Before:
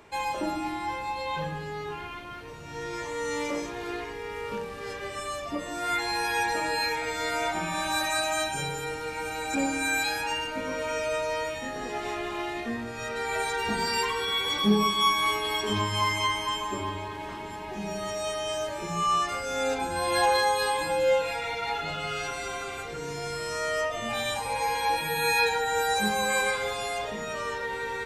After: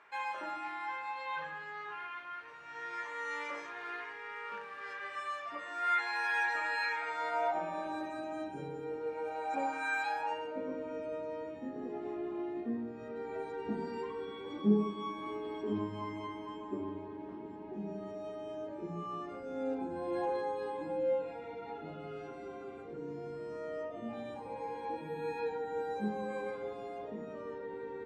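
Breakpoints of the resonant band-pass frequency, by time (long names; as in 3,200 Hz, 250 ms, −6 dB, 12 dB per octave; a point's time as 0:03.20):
resonant band-pass, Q 1.9
0:06.91 1,500 Hz
0:08.17 310 Hz
0:08.79 310 Hz
0:09.93 1,200 Hz
0:10.81 290 Hz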